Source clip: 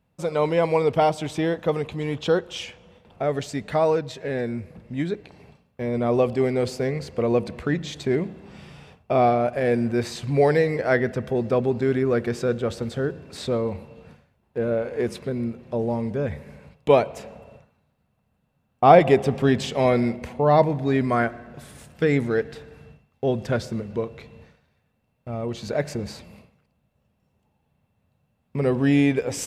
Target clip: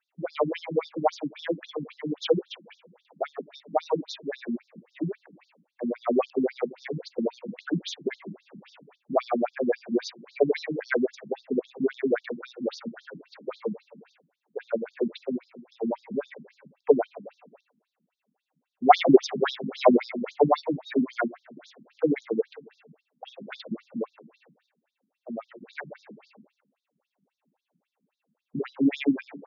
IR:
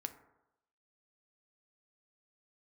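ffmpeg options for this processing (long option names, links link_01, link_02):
-filter_complex "[0:a]asplit=3[link_01][link_02][link_03];[link_01]afade=type=out:start_time=18.91:duration=0.02[link_04];[link_02]acontrast=80,afade=type=in:start_time=18.91:duration=0.02,afade=type=out:start_time=20.45:duration=0.02[link_05];[link_03]afade=type=in:start_time=20.45:duration=0.02[link_06];[link_04][link_05][link_06]amix=inputs=3:normalize=0,afftfilt=real='re*between(b*sr/1024,210*pow(5000/210,0.5+0.5*sin(2*PI*3.7*pts/sr))/1.41,210*pow(5000/210,0.5+0.5*sin(2*PI*3.7*pts/sr))*1.41)':imag='im*between(b*sr/1024,210*pow(5000/210,0.5+0.5*sin(2*PI*3.7*pts/sr))/1.41,210*pow(5000/210,0.5+0.5*sin(2*PI*3.7*pts/sr))*1.41)':win_size=1024:overlap=0.75,volume=2.5dB"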